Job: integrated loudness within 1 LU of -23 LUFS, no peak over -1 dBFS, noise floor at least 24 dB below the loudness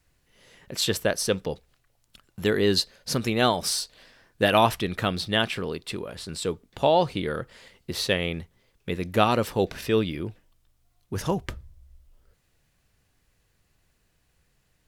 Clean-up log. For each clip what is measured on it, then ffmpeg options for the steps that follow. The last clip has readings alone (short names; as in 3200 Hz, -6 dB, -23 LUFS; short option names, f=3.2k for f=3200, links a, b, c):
loudness -26.0 LUFS; peak -5.0 dBFS; loudness target -23.0 LUFS
-> -af "volume=3dB"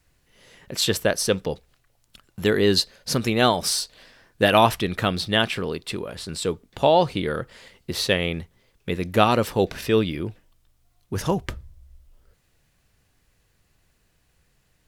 loudness -23.0 LUFS; peak -2.0 dBFS; noise floor -66 dBFS